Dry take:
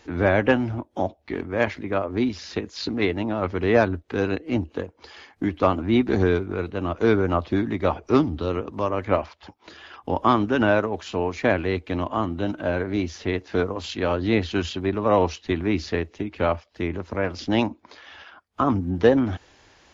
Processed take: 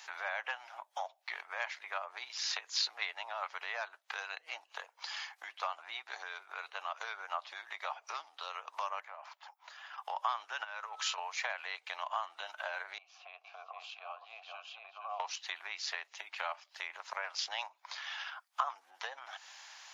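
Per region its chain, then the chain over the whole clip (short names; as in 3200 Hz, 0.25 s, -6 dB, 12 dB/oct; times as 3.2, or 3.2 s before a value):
9–9.98 HPF 540 Hz 6 dB/oct + bell 4500 Hz -13.5 dB 2.8 oct + compressor 16:1, threshold -36 dBFS
10.63–11.17 bell 670 Hz -9.5 dB 0.29 oct + whine 1300 Hz -47 dBFS + compressor 5:1, threshold -31 dBFS
12.98–15.2 echo 0.461 s -8 dB + compressor 4:1, threshold -27 dBFS + vowel filter a
whole clip: high shelf 3900 Hz +8 dB; compressor 6:1, threshold -30 dBFS; steep high-pass 750 Hz 36 dB/oct; gain +1 dB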